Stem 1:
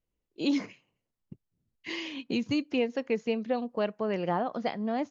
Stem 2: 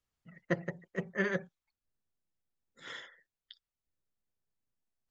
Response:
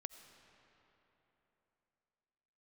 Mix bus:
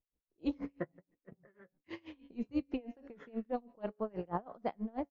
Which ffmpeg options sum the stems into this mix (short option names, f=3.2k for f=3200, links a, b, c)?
-filter_complex "[0:a]bass=f=250:g=1,treble=f=4k:g=14,bandreject=f=140.4:t=h:w=4,bandreject=f=280.8:t=h:w=4,bandreject=f=421.2:t=h:w=4,bandreject=f=561.6:t=h:w=4,bandreject=f=702:t=h:w=4,bandreject=f=842.4:t=h:w=4,bandreject=f=982.8:t=h:w=4,bandreject=f=1.1232k:t=h:w=4,bandreject=f=1.2636k:t=h:w=4,bandreject=f=1.404k:t=h:w=4,bandreject=f=1.5444k:t=h:w=4,bandreject=f=1.6848k:t=h:w=4,bandreject=f=1.8252k:t=h:w=4,bandreject=f=1.9656k:t=h:w=4,bandreject=f=2.106k:t=h:w=4,bandreject=f=2.2464k:t=h:w=4,bandreject=f=2.3868k:t=h:w=4,bandreject=f=2.5272k:t=h:w=4,bandreject=f=2.6676k:t=h:w=4,bandreject=f=2.808k:t=h:w=4,bandreject=f=2.9484k:t=h:w=4,bandreject=f=3.0888k:t=h:w=4,bandreject=f=3.2292k:t=h:w=4,bandreject=f=3.3696k:t=h:w=4,bandreject=f=3.51k:t=h:w=4,bandreject=f=3.6504k:t=h:w=4,bandreject=f=3.7908k:t=h:w=4,bandreject=f=3.9312k:t=h:w=4,bandreject=f=4.0716k:t=h:w=4,bandreject=f=4.212k:t=h:w=4,bandreject=f=4.3524k:t=h:w=4,bandreject=f=4.4928k:t=h:w=4,bandreject=f=4.6332k:t=h:w=4,bandreject=f=4.7736k:t=h:w=4,bandreject=f=4.914k:t=h:w=4,bandreject=f=5.0544k:t=h:w=4,bandreject=f=5.1948k:t=h:w=4,bandreject=f=5.3352k:t=h:w=4,bandreject=f=5.4756k:t=h:w=4,bandreject=f=5.616k:t=h:w=4,tremolo=f=230:d=0.4,volume=-1.5dB,asplit=3[a][b][c];[b]volume=-19.5dB[d];[1:a]flanger=delay=8.2:depth=6.5:regen=33:speed=1.1:shape=sinusoidal,adelay=300,volume=0.5dB[e];[c]apad=whole_len=238285[f];[e][f]sidechaingate=range=-14dB:threshold=-59dB:ratio=16:detection=peak[g];[2:a]atrim=start_sample=2205[h];[d][h]afir=irnorm=-1:irlink=0[i];[a][g][i]amix=inputs=3:normalize=0,lowpass=1.3k,aeval=exprs='val(0)*pow(10,-28*(0.5-0.5*cos(2*PI*6.2*n/s))/20)':c=same"